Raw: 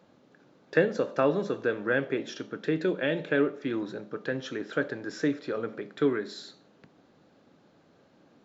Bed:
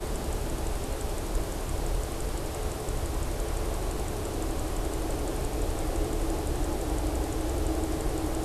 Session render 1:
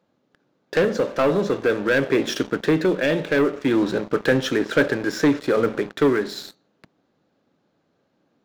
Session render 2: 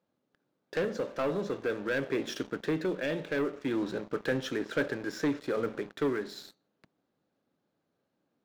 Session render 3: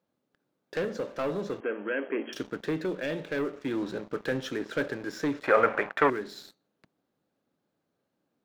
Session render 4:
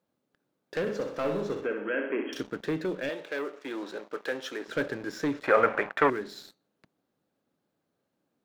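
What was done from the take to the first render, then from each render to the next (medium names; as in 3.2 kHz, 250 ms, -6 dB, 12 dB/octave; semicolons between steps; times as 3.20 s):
waveshaping leveller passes 3; gain riding 0.5 s
trim -11.5 dB
1.60–2.33 s: brick-wall FIR band-pass 190–3300 Hz; 5.43–6.10 s: high-order bell 1.2 kHz +16 dB 2.6 oct
0.80–2.41 s: flutter echo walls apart 10.9 m, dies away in 0.6 s; 3.09–4.68 s: high-pass 420 Hz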